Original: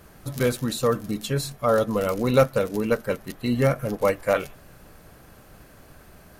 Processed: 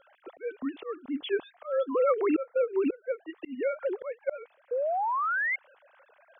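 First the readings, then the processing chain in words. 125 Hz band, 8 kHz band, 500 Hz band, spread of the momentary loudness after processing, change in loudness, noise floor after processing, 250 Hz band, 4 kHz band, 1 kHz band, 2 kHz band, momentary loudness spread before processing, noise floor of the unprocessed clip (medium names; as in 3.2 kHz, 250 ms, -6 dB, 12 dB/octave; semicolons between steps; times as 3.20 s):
under -40 dB, under -40 dB, -5.5 dB, 11 LU, -6.0 dB, -65 dBFS, -6.5 dB, under -10 dB, -2.0 dB, 0.0 dB, 8 LU, -51 dBFS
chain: formants replaced by sine waves; slow attack 496 ms; painted sound rise, 4.71–5.56 s, 470–2200 Hz -30 dBFS; trim +2 dB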